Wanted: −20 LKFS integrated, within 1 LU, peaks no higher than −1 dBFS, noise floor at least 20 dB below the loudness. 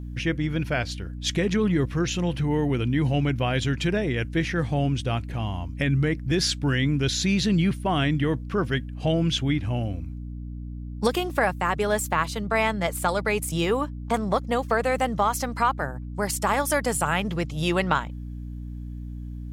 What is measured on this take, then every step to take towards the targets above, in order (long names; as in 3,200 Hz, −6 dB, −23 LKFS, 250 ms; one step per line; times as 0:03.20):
mains hum 60 Hz; hum harmonics up to 300 Hz; level of the hum −32 dBFS; integrated loudness −25.0 LKFS; sample peak −6.5 dBFS; target loudness −20.0 LKFS
→ mains-hum notches 60/120/180/240/300 Hz
level +5 dB